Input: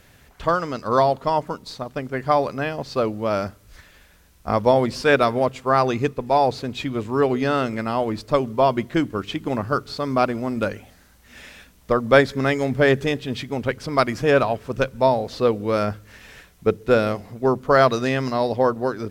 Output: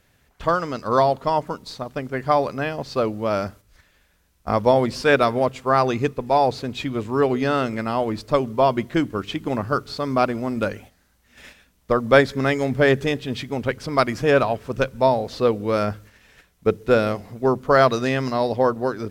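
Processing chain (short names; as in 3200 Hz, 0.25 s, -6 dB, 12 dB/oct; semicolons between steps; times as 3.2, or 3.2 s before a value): gate -42 dBFS, range -9 dB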